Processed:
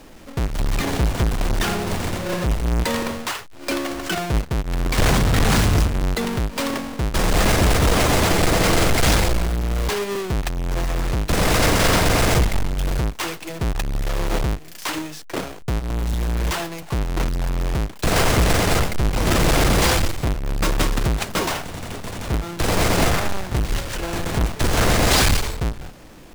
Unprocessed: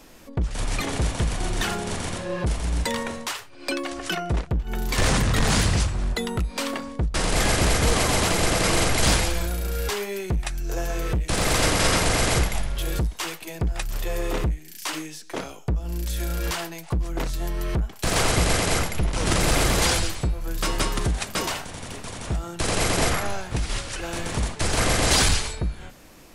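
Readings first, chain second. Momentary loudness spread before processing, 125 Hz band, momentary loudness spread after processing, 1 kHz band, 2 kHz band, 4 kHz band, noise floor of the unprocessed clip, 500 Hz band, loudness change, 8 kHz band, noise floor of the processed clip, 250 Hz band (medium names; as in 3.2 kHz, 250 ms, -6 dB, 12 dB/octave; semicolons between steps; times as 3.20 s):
10 LU, +4.5 dB, 10 LU, +4.0 dB, +3.0 dB, +1.5 dB, -43 dBFS, +4.0 dB, +3.5 dB, -0.5 dB, -38 dBFS, +5.0 dB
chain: square wave that keeps the level; treble shelf 11 kHz -4 dB; crackling interface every 0.23 s, samples 128, repeat, from 0.49 s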